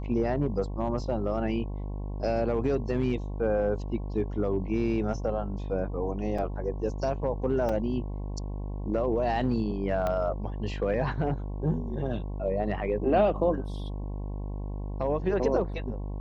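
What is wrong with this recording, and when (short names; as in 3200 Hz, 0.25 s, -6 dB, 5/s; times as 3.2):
buzz 50 Hz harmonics 22 -34 dBFS
6.38 gap 4.6 ms
7.69 gap 3.8 ms
10.07 pop -17 dBFS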